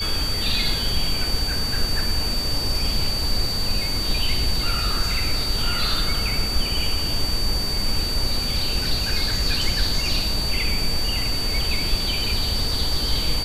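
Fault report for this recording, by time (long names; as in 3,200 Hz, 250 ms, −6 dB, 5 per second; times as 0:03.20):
whistle 4,600 Hz −25 dBFS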